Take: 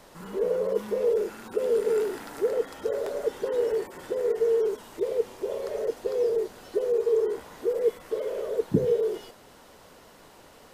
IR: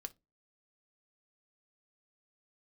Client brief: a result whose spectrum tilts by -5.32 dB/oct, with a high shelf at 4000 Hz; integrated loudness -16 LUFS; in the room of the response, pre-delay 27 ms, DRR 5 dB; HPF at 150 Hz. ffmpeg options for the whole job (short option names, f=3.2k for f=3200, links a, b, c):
-filter_complex "[0:a]highpass=150,highshelf=f=4k:g=4,asplit=2[a][b];[1:a]atrim=start_sample=2205,adelay=27[c];[b][c]afir=irnorm=-1:irlink=0,volume=-1dB[d];[a][d]amix=inputs=2:normalize=0,volume=10dB"